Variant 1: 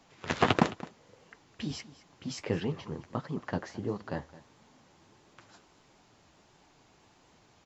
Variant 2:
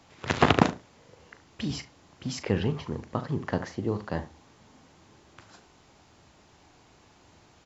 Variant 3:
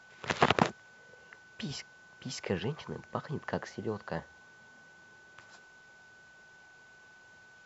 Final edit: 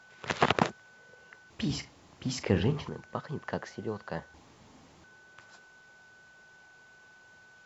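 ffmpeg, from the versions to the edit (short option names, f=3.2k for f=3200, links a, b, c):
-filter_complex "[1:a]asplit=2[a][b];[2:a]asplit=3[c][d][e];[c]atrim=end=1.502[f];[a]atrim=start=1.498:end=2.892[g];[d]atrim=start=2.888:end=4.342[h];[b]atrim=start=4.338:end=5.042[i];[e]atrim=start=5.038[j];[f][g]acrossfade=d=0.004:c1=hsin:c2=hsin[k];[k][h]acrossfade=d=0.004:c1=hsin:c2=hsin[l];[l][i]acrossfade=d=0.004:c1=hsin:c2=hsin[m];[m][j]acrossfade=d=0.004:c1=hsin:c2=hsin"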